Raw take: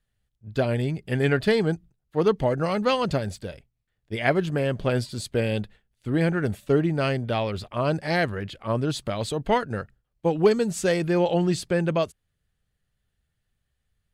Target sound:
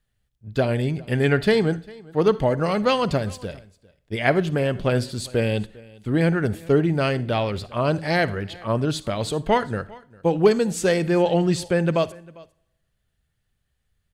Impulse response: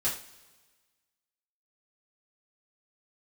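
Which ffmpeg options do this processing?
-filter_complex "[0:a]aecho=1:1:400:0.0708,asplit=2[link_01][link_02];[1:a]atrim=start_sample=2205,asetrate=52920,aresample=44100,adelay=48[link_03];[link_02][link_03]afir=irnorm=-1:irlink=0,volume=-22.5dB[link_04];[link_01][link_04]amix=inputs=2:normalize=0,volume=2.5dB"

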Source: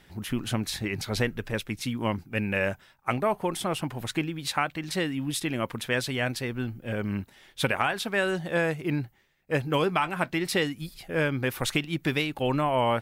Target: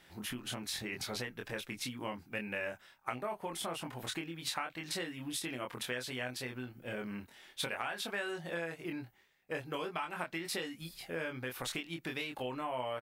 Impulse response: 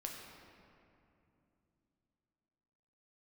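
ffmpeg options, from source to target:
-filter_complex "[0:a]asplit=2[link_01][link_02];[link_02]adelay=24,volume=-3.5dB[link_03];[link_01][link_03]amix=inputs=2:normalize=0,acompressor=threshold=-30dB:ratio=6,lowshelf=frequency=230:gain=-11,volume=-3.5dB"

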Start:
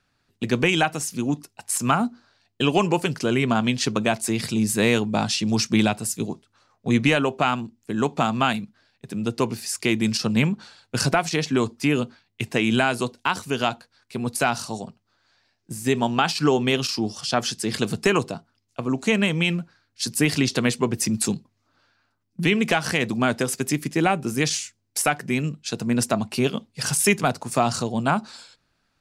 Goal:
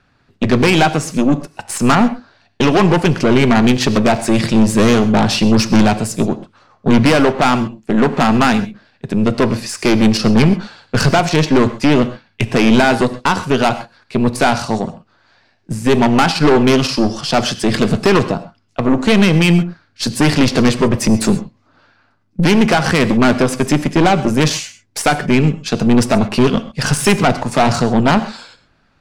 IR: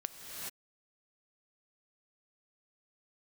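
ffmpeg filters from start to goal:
-filter_complex "[0:a]aemphasis=mode=reproduction:type=75fm,aeval=exprs='0.501*(cos(1*acos(clip(val(0)/0.501,-1,1)))-cos(1*PI/2))+0.126*(cos(5*acos(clip(val(0)/0.501,-1,1)))-cos(5*PI/2))+0.1*(cos(8*acos(clip(val(0)/0.501,-1,1)))-cos(8*PI/2))':channel_layout=same,acontrast=88[link_01];[1:a]atrim=start_sample=2205,atrim=end_sample=6174[link_02];[link_01][link_02]afir=irnorm=-1:irlink=0,volume=1dB"

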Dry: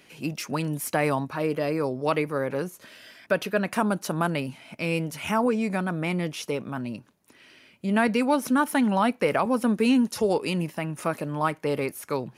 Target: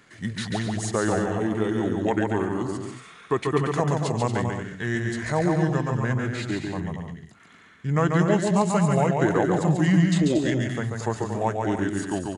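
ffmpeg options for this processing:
ffmpeg -i in.wav -af "asetrate=31183,aresample=44100,atempo=1.41421,aecho=1:1:140|231|290.2|328.6|353.6:0.631|0.398|0.251|0.158|0.1" out.wav

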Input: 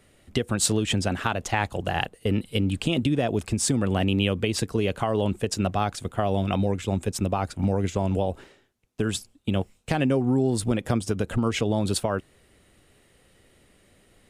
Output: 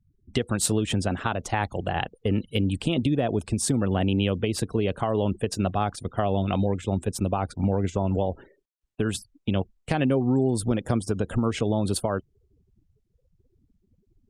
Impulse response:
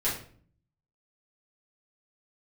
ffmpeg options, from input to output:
-af "adynamicequalizer=threshold=0.00562:dfrequency=2400:dqfactor=1.2:tfrequency=2400:tqfactor=1.2:attack=5:release=100:ratio=0.375:range=2.5:mode=cutabove:tftype=bell,afftfilt=real='re*gte(hypot(re,im),0.00562)':imag='im*gte(hypot(re,im),0.00562)':win_size=1024:overlap=0.75" -ar 48000 -c:a libopus -b:a 48k

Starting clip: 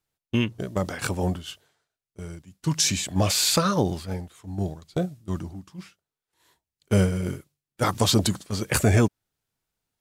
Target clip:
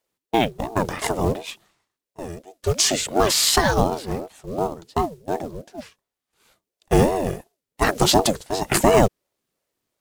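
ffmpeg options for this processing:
ffmpeg -i in.wav -af "acrusher=bits=6:mode=log:mix=0:aa=0.000001,aeval=exprs='val(0)*sin(2*PI*410*n/s+410*0.4/2.8*sin(2*PI*2.8*n/s))':channel_layout=same,volume=6.5dB" out.wav

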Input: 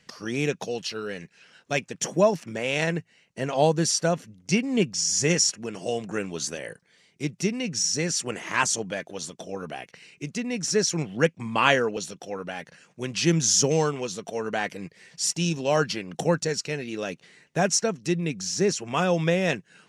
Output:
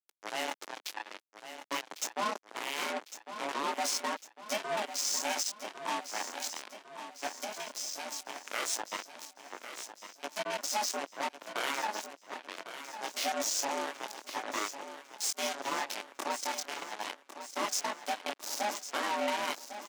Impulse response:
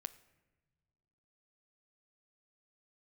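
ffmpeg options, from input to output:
-filter_complex "[0:a]flanger=delay=19:depth=4.4:speed=0.21,aeval=exprs='val(0)*sin(2*PI*420*n/s)':channel_layout=same,asettb=1/sr,asplit=3[link_01][link_02][link_03];[link_01]atrim=end=2.484[link_04];[link_02]atrim=start=2.48:end=2.94,asetpts=PTS-STARTPTS,afade=type=in:duration=0.004:curve=qsin,afade=type=out:start_time=0.456:duration=0.004:curve=qsin,aeval=exprs='0.141*(cos(1*acos(clip(val(0)/0.141,-1,1)))-cos(1*PI/2))+0.0126*(cos(6*acos(clip(val(0)/0.141,-1,1)))-cos(6*PI/2))+0.0141*(cos(8*acos(clip(val(0)/0.141,-1,1)))-cos(8*PI/2))':channel_layout=same[link_05];[link_03]atrim=start=2.936[link_06];[link_04][link_05]acrossfade=duration=0.004:curve1=hsin:curve2=qsin[link_07];[link_07][link_06]acrossfade=duration=0.004:curve1=qsin:curve2=hsin,alimiter=limit=-20.5dB:level=0:latency=1:release=116,acrusher=bits=4:mix=0:aa=0.5,asettb=1/sr,asplit=3[link_08][link_09][link_10];[link_08]atrim=end=7.424[link_11];[link_09]atrim=start=7.42:end=8.44,asetpts=PTS-STARTPTS,afade=type=in:duration=0.004:curve=qsin,afade=type=out:start_time=1.016:duration=0.004:curve=qsin,acompressor=threshold=-34dB:ratio=6[link_12];[link_10]atrim=start=8.436[link_13];[link_11][link_12]acrossfade=duration=0.004:curve1=hsin:curve2=qsin[link_14];[link_14][link_13]acrossfade=duration=0.004:curve1=qsin:curve2=hsin,asettb=1/sr,asplit=3[link_15][link_16][link_17];[link_15]atrim=end=18.184[link_18];[link_16]atrim=start=18.18:end=18.59,asetpts=PTS-STARTPTS,afade=type=in:duration=0.004:curve=qsin,afade=type=out:start_time=0.406:duration=0.004:curve=qsin,aeval=exprs='0.0841*(cos(1*acos(clip(val(0)/0.0841,-1,1)))-cos(1*PI/2))+0.0133*(cos(4*acos(clip(val(0)/0.0841,-1,1)))-cos(4*PI/2))':channel_layout=same[link_19];[link_17]atrim=start=18.586[link_20];[link_18][link_19]acrossfade=duration=0.004:curve1=hsin:curve2=qsin[link_21];[link_21][link_20]acrossfade=duration=0.004:curve1=qsin:curve2=hsin,highpass=frequency=300:width=0.5412,highpass=frequency=300:width=1.3066,aecho=1:1:1102|2204|3306|4408|5510:0.282|0.144|0.0733|0.0374|0.0191"

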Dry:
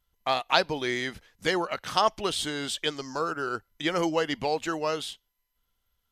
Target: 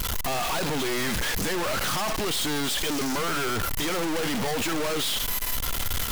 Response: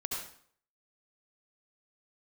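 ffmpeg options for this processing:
-filter_complex "[0:a]aeval=exprs='val(0)+0.5*0.106*sgn(val(0))':channel_layout=same,asplit=2[link_01][link_02];[1:a]atrim=start_sample=2205,afade=type=out:start_time=0.14:duration=0.01,atrim=end_sample=6615[link_03];[link_02][link_03]afir=irnorm=-1:irlink=0,volume=-9.5dB[link_04];[link_01][link_04]amix=inputs=2:normalize=0,aeval=exprs='(tanh(39.8*val(0)+0.5)-tanh(0.5))/39.8':channel_layout=same,volume=5dB"

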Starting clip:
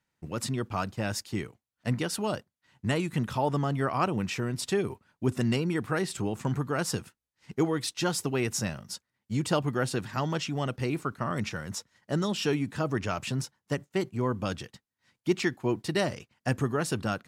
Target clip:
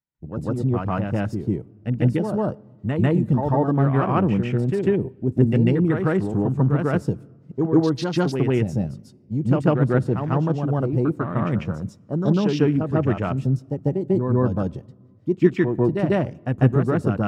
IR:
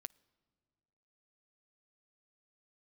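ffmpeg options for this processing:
-filter_complex "[0:a]afwtdn=0.0158,tiltshelf=frequency=780:gain=5,asplit=2[link_01][link_02];[1:a]atrim=start_sample=2205,adelay=146[link_03];[link_02][link_03]afir=irnorm=-1:irlink=0,volume=10dB[link_04];[link_01][link_04]amix=inputs=2:normalize=0"

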